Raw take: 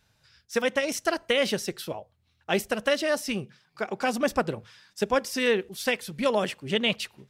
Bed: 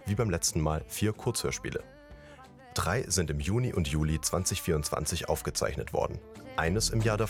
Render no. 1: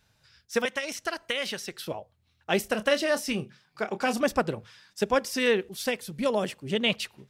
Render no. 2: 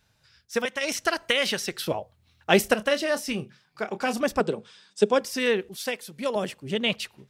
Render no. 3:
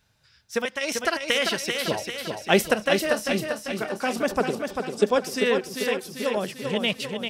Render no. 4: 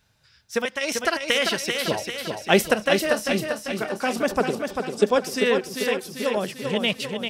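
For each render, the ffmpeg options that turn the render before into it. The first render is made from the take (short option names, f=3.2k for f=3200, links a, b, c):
-filter_complex "[0:a]asettb=1/sr,asplit=3[a][b][c];[a]atrim=end=0.654[d];[b]atrim=start=0.65:end=1.86,asetpts=PTS-STARTPTS,afade=t=in:d=0.004:c=qsin,afade=t=out:st=1.206:d=0.004:c=qsin,acrossover=split=890|4500[e][f][g];[e]acompressor=threshold=-37dB:ratio=4[h];[f]acompressor=threshold=-28dB:ratio=4[i];[g]acompressor=threshold=-41dB:ratio=4[j];[h][i][j]amix=inputs=3:normalize=0[k];[c]atrim=start=1.856[l];[d][k]acrossfade=d=0.004:c1=hsin:c2=qsin[m];[m][l]acrossfade=d=0.004:c1=qsin:c2=hsin,asettb=1/sr,asplit=3[n][o][p];[n]atrim=end=2.614[q];[o]atrim=start=2.61:end=4.21,asetpts=PTS-STARTPTS,afade=t=in:d=0.004:c=qsin,afade=t=out:st=1.596:d=0.004:c=qsin,asplit=2[r][s];[s]adelay=28,volume=-11dB[t];[r][t]amix=inputs=2:normalize=0,atrim=end_sample=70560[u];[p]atrim=start=4.206[v];[q][u]acrossfade=d=0.004:c1=hsin:c2=qsin[w];[w][v]acrossfade=d=0.004:c1=qsin:c2=hsin,asettb=1/sr,asplit=3[x][y][z];[x]atrim=end=5.864[aa];[y]atrim=start=5.86:end=6.84,asetpts=PTS-STARTPTS,afade=t=in:d=0.004:c=qsin,afade=t=out:st=0.976:d=0.004:c=qsin,equalizer=f=2k:w=0.44:g=-5[ab];[z]atrim=start=6.836[ac];[aa][ab]acrossfade=d=0.004:c1=hsin:c2=qsin[ad];[ad][ac]acrossfade=d=0.004:c1=qsin:c2=hsin"
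-filter_complex "[0:a]asettb=1/sr,asplit=3[a][b][c];[a]atrim=end=4.404[d];[b]atrim=start=4.4:end=5.21,asetpts=PTS-STARTPTS,afade=t=in:d=0.004:c=qsin,afade=t=out:st=0.806:d=0.004:c=qsin,highpass=f=150:w=0.5412,highpass=f=150:w=1.3066,equalizer=f=210:t=q:w=4:g=5,equalizer=f=430:t=q:w=4:g=9,equalizer=f=1.9k:t=q:w=4:g=-5,equalizer=f=3.5k:t=q:w=4:g=5,equalizer=f=8.4k:t=q:w=4:g=7,lowpass=f=9.4k:w=0.5412,lowpass=f=9.4k:w=1.3066[e];[c]atrim=start=5.206[f];[d][e]acrossfade=d=0.004:c1=hsin:c2=qsin[g];[g][f]acrossfade=d=0.004:c1=qsin:c2=hsin,asettb=1/sr,asplit=3[h][i][j];[h]atrim=end=5.764[k];[i]atrim=start=5.76:end=6.36,asetpts=PTS-STARTPTS,afade=t=in:d=0.004:c=qsin,afade=t=out:st=0.596:d=0.004:c=qsin,highpass=f=340:p=1[l];[j]atrim=start=6.356[m];[k][l]acrossfade=d=0.004:c1=hsin:c2=qsin[n];[n][m]acrossfade=d=0.004:c1=qsin:c2=hsin,asplit=3[o][p][q];[o]atrim=end=0.812[r];[p]atrim=start=0.808:end=2.742,asetpts=PTS-STARTPTS,volume=6.5dB[s];[q]atrim=start=2.738[t];[r][s]acrossfade=d=0.004:c1=hsin:c2=hsin[u];[u][t]acrossfade=d=0.004:c1=hsin:c2=hsin"
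-af "aecho=1:1:394|788|1182|1576|1970|2364|2758:0.531|0.281|0.149|0.079|0.0419|0.0222|0.0118"
-af "volume=1.5dB"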